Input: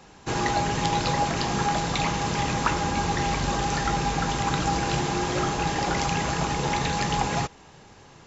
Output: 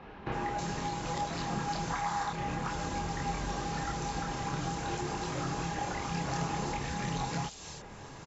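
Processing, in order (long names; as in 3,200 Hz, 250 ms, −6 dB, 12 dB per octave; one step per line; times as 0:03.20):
0:01.90–0:02.30: flat-topped bell 1,200 Hz +11.5 dB
downward compressor 8 to 1, threshold −35 dBFS, peak gain reduction 20.5 dB
multi-voice chorus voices 4, 0.57 Hz, delay 27 ms, depth 3.7 ms
multiband delay without the direct sound lows, highs 320 ms, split 3,100 Hz
level +6 dB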